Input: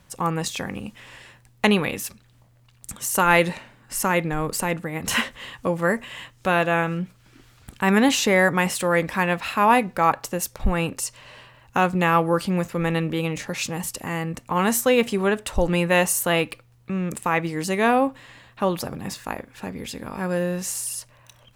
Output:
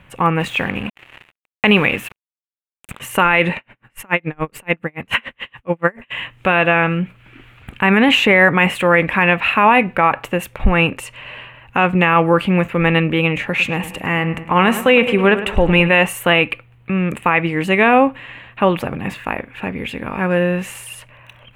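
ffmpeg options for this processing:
ffmpeg -i in.wav -filter_complex "[0:a]asettb=1/sr,asplit=3[link_01][link_02][link_03];[link_01]atrim=end=0.404[link_04];[link_02]atrim=start=0.4:end=3,asetpts=PTS-STARTPTS,afade=type=in:duration=0.004:curve=qsin,afade=type=out:start_time=2.596:duration=0.004:curve=qsin,acrusher=bits=5:mix=0:aa=0.5[link_05];[link_03]atrim=start=2.996[link_06];[link_04][link_05]acrossfade=duration=0.004:curve1=hsin:curve2=qsin[link_07];[link_07][link_06]acrossfade=duration=0.004:curve1=qsin:curve2=hsin,asplit=3[link_08][link_09][link_10];[link_08]afade=type=out:start_time=3.54:duration=0.02[link_11];[link_09]aeval=exprs='val(0)*pow(10,-37*(0.5-0.5*cos(2*PI*7*n/s))/20)':channel_layout=same,afade=type=in:start_time=3.54:duration=0.02,afade=type=out:start_time=6.1:duration=0.02[link_12];[link_10]afade=type=in:start_time=6.1:duration=0.02[link_13];[link_11][link_12][link_13]amix=inputs=3:normalize=0,asettb=1/sr,asplit=3[link_14][link_15][link_16];[link_14]atrim=end=13.484[link_17];[link_15]atrim=start=13.48:end=15.89,asetpts=PTS-STARTPTS,afade=type=in:duration=0.004:curve=qsin,afade=type=out:start_time=2.406:duration=0.004:curve=qsin,asplit=2[link_18][link_19];[link_19]adelay=105,lowpass=frequency=3200:poles=1,volume=-12.5dB,asplit=2[link_20][link_21];[link_21]adelay=105,lowpass=frequency=3200:poles=1,volume=0.52,asplit=2[link_22][link_23];[link_23]adelay=105,lowpass=frequency=3200:poles=1,volume=0.52,asplit=2[link_24][link_25];[link_25]adelay=105,lowpass=frequency=3200:poles=1,volume=0.52,asplit=2[link_26][link_27];[link_27]adelay=105,lowpass=frequency=3200:poles=1,volume=0.52[link_28];[link_18][link_20][link_22][link_24][link_26][link_28]amix=inputs=6:normalize=0,atrim=end_sample=106281[link_29];[link_16]atrim=start=15.886[link_30];[link_17][link_29]acrossfade=duration=0.004:curve1=hsin:curve2=qsin[link_31];[link_31][link_30]acrossfade=duration=0.004:curve1=qsin:curve2=hsin,highshelf=frequency=3700:width_type=q:width=3:gain=-12.5,alimiter=level_in=9dB:limit=-1dB:release=50:level=0:latency=1,volume=-1.5dB" out.wav

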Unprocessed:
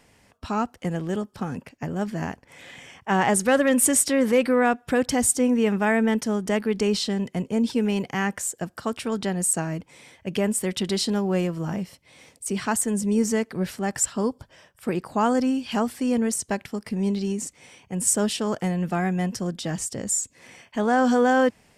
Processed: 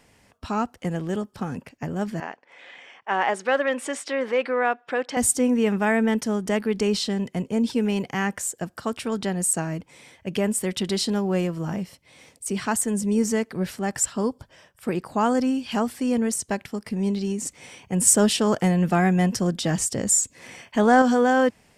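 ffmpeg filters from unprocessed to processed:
ffmpeg -i in.wav -filter_complex "[0:a]asettb=1/sr,asplit=3[link_01][link_02][link_03];[link_01]atrim=end=2.204[link_04];[link_02]atrim=start=2.2:end=5.17,asetpts=PTS-STARTPTS,afade=type=in:duration=0.004:curve=qsin,afade=type=out:start_time=2.966:duration=0.004:curve=qsin,highpass=480,lowpass=3500[link_05];[link_03]atrim=start=5.166[link_06];[link_04][link_05]acrossfade=duration=0.004:curve1=hsin:curve2=qsin[link_07];[link_07][link_06]acrossfade=duration=0.004:curve1=qsin:curve2=hsin,asettb=1/sr,asplit=3[link_08][link_09][link_10];[link_08]atrim=end=17.454[link_11];[link_09]atrim=start=17.45:end=21.02,asetpts=PTS-STARTPTS,afade=type=in:duration=0.004:curve=qsin,afade=type=out:start_time=3.566:duration=0.004:curve=qsin,acontrast=24[link_12];[link_10]atrim=start=21.016[link_13];[link_11][link_12]acrossfade=duration=0.004:curve1=hsin:curve2=qsin[link_14];[link_14][link_13]acrossfade=duration=0.004:curve1=qsin:curve2=hsin" out.wav

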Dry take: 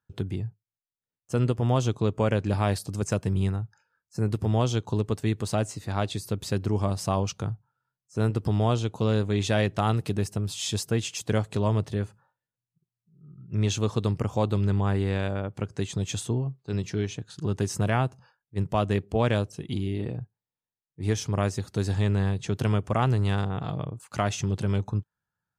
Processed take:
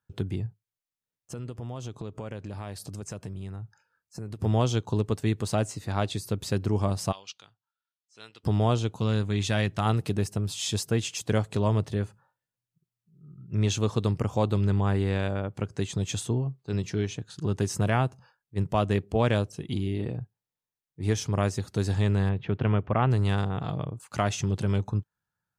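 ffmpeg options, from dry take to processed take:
ffmpeg -i in.wav -filter_complex "[0:a]asettb=1/sr,asplit=3[link_01][link_02][link_03];[link_01]atrim=end=0.464[link_04];[link_02]atrim=start=0.46:end=4.4,asetpts=PTS-STARTPTS,afade=type=in:duration=0.004:curve=qsin,afade=type=out:start_time=3.936:duration=0.004:curve=qsin,acompressor=threshold=-34dB:ratio=6:attack=3.2:release=140:knee=1:detection=peak[link_05];[link_03]atrim=start=4.396[link_06];[link_04][link_05]acrossfade=duration=0.004:curve1=hsin:curve2=qsin[link_07];[link_07][link_06]acrossfade=duration=0.004:curve1=qsin:curve2=hsin,asplit=3[link_08][link_09][link_10];[link_08]afade=type=out:start_time=7.11:duration=0.02[link_11];[link_09]bandpass=frequency=3500:width_type=q:width=2,afade=type=in:start_time=7.11:duration=0.02,afade=type=out:start_time=8.43:duration=0.02[link_12];[link_10]afade=type=in:start_time=8.43:duration=0.02[link_13];[link_11][link_12][link_13]amix=inputs=3:normalize=0,asettb=1/sr,asplit=3[link_14][link_15][link_16];[link_14]atrim=end=8.934[link_17];[link_15]atrim=start=8.93:end=9.86,asetpts=PTS-STARTPTS,afade=type=in:duration=0.004:curve=qsin,afade=type=out:start_time=0.926:duration=0.004:curve=qsin,equalizer=frequency=490:width_type=o:width=1.6:gain=-6[link_18];[link_16]atrim=start=9.856[link_19];[link_17][link_18]acrossfade=duration=0.004:curve1=hsin:curve2=qsin[link_20];[link_20][link_19]acrossfade=duration=0.004:curve1=qsin:curve2=hsin,asettb=1/sr,asplit=3[link_21][link_22][link_23];[link_21]atrim=end=22.294[link_24];[link_22]atrim=start=22.29:end=23.11,asetpts=PTS-STARTPTS,afade=type=in:duration=0.004:curve=qsin,afade=type=out:start_time=0.816:duration=0.004:curve=qsin,lowpass=frequency=2900:width=0.5412,lowpass=frequency=2900:width=1.3066[link_25];[link_23]atrim=start=23.106[link_26];[link_24][link_25]acrossfade=duration=0.004:curve1=hsin:curve2=qsin[link_27];[link_27][link_26]acrossfade=duration=0.004:curve1=qsin:curve2=hsin" out.wav

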